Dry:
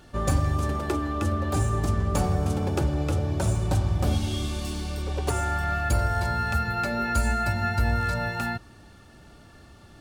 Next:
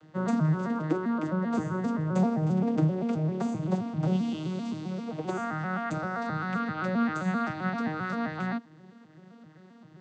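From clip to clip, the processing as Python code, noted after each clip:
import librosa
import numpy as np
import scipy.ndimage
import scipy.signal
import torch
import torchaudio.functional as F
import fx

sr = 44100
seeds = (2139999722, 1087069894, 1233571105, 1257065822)

y = fx.vocoder_arp(x, sr, chord='minor triad', root=51, every_ms=131)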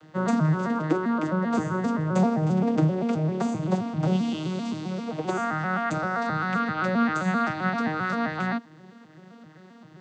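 y = fx.low_shelf(x, sr, hz=430.0, db=-4.5)
y = y * librosa.db_to_amplitude(6.5)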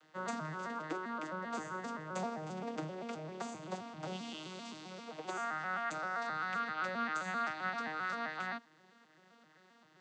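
y = fx.highpass(x, sr, hz=1100.0, slope=6)
y = y * librosa.db_to_amplitude(-6.5)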